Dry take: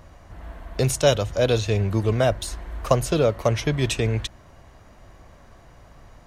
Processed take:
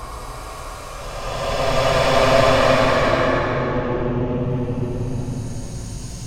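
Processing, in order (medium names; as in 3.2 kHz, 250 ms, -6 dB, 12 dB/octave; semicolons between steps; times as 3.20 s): low-pass that closes with the level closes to 2.5 kHz, closed at -15 dBFS; peaking EQ 1.7 kHz -7 dB 0.95 oct; Chebyshev shaper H 8 -10 dB, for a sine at -4 dBFS; Paulstretch 30×, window 0.10 s, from 2.84 s; trim -1 dB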